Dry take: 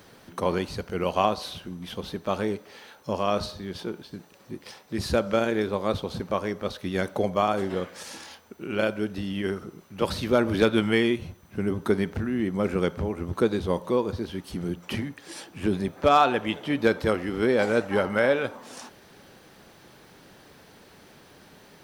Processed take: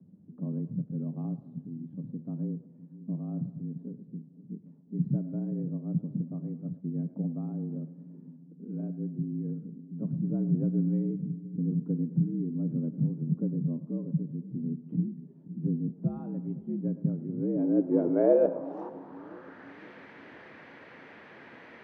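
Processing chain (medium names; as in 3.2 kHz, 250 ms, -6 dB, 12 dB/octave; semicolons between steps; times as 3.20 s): low-pass sweep 120 Hz -> 2 kHz, 17.22–19.81 s; frequency shift +69 Hz; two-band feedback delay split 390 Hz, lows 514 ms, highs 109 ms, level -15 dB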